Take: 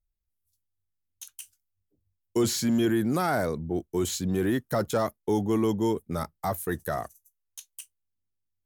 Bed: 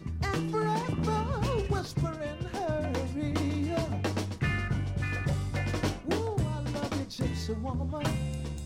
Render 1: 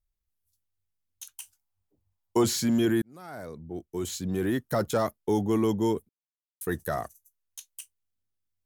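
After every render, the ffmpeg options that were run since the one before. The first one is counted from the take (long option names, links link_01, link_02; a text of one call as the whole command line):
ffmpeg -i in.wav -filter_complex "[0:a]asettb=1/sr,asplit=3[link_01][link_02][link_03];[link_01]atrim=end=1.374[link_04];[link_02]atrim=start=1.37:end=2.44,asetpts=PTS-STARTPTS,afade=type=in:duration=0.004:curve=qsin,afade=type=out:start_time=1.066:duration=0.004:curve=qsin,equalizer=frequency=870:width=1.7:gain=11.5[link_05];[link_03]atrim=start=2.436[link_06];[link_04][link_05]acrossfade=duration=0.004:curve1=hsin:curve2=qsin[link_07];[link_07][link_06]acrossfade=duration=0.004:curve1=qsin:curve2=hsin,asplit=4[link_08][link_09][link_10][link_11];[link_08]atrim=end=3.02,asetpts=PTS-STARTPTS,afade=type=out:start_time=3.016:duration=0.004:curve=hsin[link_12];[link_09]atrim=start=3.02:end=6.09,asetpts=PTS-STARTPTS,afade=type=in:duration=1.76,afade=type=out:start_time=3.066:duration=0.004:curve=hsin[link_13];[link_10]atrim=start=6.09:end=6.61,asetpts=PTS-STARTPTS,volume=0[link_14];[link_11]atrim=start=6.61,asetpts=PTS-STARTPTS,afade=type=in:duration=0.004:curve=hsin[link_15];[link_12][link_13][link_14][link_15]concat=n=4:v=0:a=1" out.wav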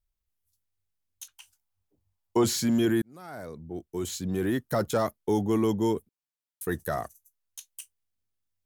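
ffmpeg -i in.wav -filter_complex "[0:a]asettb=1/sr,asplit=3[link_01][link_02][link_03];[link_01]atrim=end=1.264[link_04];[link_02]atrim=start=1.26:end=2.43,asetpts=PTS-STARTPTS,afade=type=in:duration=0.004:curve=qsin,afade=type=out:start_time=1.166:duration=0.004:curve=qsin,acrossover=split=5200[link_05][link_06];[link_06]acompressor=threshold=-54dB:ratio=4:attack=1:release=60[link_07];[link_05][link_07]amix=inputs=2:normalize=0[link_08];[link_03]atrim=start=2.426[link_09];[link_04][link_08]acrossfade=duration=0.004:curve1=hsin:curve2=qsin[link_10];[link_10][link_09]acrossfade=duration=0.004:curve1=qsin:curve2=hsin" out.wav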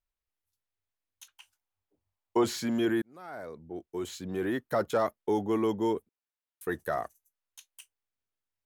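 ffmpeg -i in.wav -af "bass=frequency=250:gain=-10,treble=frequency=4000:gain=-10" out.wav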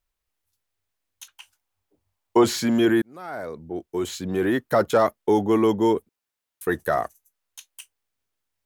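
ffmpeg -i in.wav -af "volume=8.5dB" out.wav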